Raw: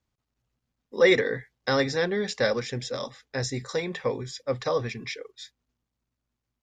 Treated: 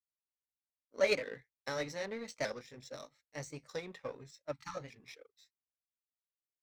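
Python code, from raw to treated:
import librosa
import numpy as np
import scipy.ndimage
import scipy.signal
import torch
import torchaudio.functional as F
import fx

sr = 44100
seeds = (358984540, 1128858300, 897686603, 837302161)

y = fx.pitch_ramps(x, sr, semitones=2.5, every_ms=1225)
y = fx.power_curve(y, sr, exponent=1.4)
y = fx.spec_erase(y, sr, start_s=4.52, length_s=0.24, low_hz=320.0, high_hz=800.0)
y = F.gain(torch.from_numpy(y), -7.0).numpy()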